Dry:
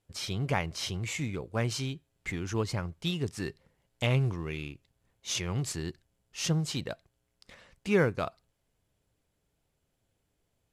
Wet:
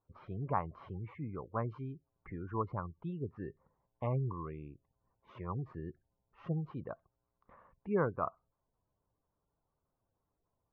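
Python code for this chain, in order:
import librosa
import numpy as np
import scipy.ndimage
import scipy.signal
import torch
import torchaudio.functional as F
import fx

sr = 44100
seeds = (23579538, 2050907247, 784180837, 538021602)

y = fx.spec_gate(x, sr, threshold_db=-25, keep='strong')
y = fx.ladder_lowpass(y, sr, hz=1200.0, resonance_pct=70)
y = F.gain(torch.from_numpy(y), 4.0).numpy()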